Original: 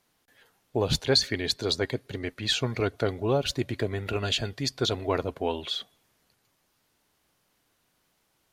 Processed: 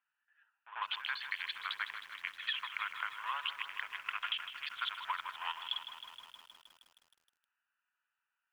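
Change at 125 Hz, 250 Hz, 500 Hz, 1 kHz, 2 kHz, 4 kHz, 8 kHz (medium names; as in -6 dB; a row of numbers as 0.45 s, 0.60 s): under -40 dB, under -40 dB, -38.5 dB, -3.5 dB, -2.0 dB, -10.5 dB, -26.5 dB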